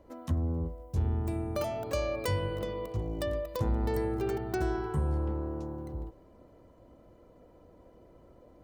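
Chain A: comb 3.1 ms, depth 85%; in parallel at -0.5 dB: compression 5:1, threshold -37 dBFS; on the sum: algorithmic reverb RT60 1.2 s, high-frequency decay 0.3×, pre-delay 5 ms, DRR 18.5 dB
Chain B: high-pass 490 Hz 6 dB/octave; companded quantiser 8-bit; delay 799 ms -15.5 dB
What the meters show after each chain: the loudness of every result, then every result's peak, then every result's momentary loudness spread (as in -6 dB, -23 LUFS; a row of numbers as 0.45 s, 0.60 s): -28.5 LUFS, -38.5 LUFS; -14.0 dBFS, -19.5 dBFS; 6 LU, 11 LU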